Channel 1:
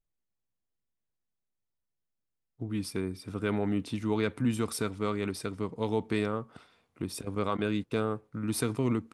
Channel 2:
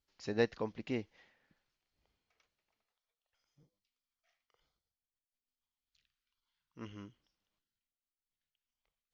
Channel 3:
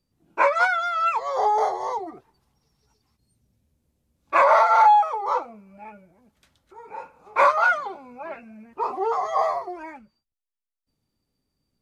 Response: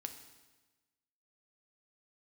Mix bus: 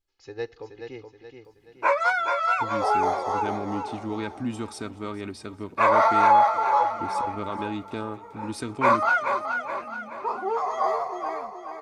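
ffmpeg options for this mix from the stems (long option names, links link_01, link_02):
-filter_complex "[0:a]lowpass=frequency=8600:width=0.5412,lowpass=frequency=8600:width=1.3066,aecho=1:1:3.2:0.43,volume=-2.5dB,asplit=2[link_01][link_02];[link_02]volume=-20dB[link_03];[1:a]aecho=1:1:2.4:0.91,volume=-7dB,asplit=3[link_04][link_05][link_06];[link_05]volume=-12dB[link_07];[link_06]volume=-5.5dB[link_08];[2:a]acompressor=mode=upward:threshold=-58dB:ratio=2.5,adelay=1450,volume=-2.5dB,asplit=2[link_09][link_10];[link_10]volume=-6.5dB[link_11];[3:a]atrim=start_sample=2205[link_12];[link_07][link_12]afir=irnorm=-1:irlink=0[link_13];[link_03][link_08][link_11]amix=inputs=3:normalize=0,aecho=0:1:425|850|1275|1700|2125|2550:1|0.45|0.202|0.0911|0.041|0.0185[link_14];[link_01][link_04][link_09][link_13][link_14]amix=inputs=5:normalize=0"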